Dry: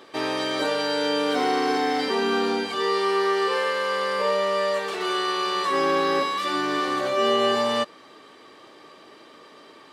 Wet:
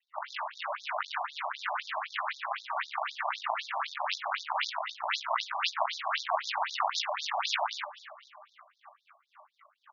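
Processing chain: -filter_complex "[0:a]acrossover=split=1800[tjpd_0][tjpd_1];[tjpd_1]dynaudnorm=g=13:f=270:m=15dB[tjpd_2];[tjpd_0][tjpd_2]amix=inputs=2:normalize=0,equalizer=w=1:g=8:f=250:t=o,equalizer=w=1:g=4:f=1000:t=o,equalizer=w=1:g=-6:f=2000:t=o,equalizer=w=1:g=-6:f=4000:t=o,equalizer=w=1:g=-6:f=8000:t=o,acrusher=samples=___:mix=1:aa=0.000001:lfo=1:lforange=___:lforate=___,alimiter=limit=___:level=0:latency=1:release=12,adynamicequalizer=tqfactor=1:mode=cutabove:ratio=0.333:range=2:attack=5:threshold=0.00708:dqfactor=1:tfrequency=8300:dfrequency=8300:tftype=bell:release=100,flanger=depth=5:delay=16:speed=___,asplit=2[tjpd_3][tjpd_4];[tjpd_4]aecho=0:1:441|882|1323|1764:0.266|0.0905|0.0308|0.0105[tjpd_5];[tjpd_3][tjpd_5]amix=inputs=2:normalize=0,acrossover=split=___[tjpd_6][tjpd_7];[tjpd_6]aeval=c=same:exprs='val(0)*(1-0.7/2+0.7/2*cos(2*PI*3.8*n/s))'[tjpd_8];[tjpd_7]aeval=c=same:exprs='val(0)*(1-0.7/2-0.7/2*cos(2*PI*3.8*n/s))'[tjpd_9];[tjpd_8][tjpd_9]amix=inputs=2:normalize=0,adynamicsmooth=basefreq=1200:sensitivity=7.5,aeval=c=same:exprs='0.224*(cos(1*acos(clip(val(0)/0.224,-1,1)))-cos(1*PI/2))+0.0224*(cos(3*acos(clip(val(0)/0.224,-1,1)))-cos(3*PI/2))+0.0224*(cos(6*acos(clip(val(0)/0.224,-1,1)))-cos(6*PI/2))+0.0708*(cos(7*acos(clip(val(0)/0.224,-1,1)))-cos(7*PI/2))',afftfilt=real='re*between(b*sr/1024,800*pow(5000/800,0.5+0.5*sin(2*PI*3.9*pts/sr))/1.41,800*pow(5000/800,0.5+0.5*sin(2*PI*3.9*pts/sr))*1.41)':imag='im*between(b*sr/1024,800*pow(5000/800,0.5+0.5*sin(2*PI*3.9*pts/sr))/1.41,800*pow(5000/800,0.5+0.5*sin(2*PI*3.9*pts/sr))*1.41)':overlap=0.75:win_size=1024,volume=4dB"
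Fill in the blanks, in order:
37, 37, 2.1, -15.5dB, 0.37, 460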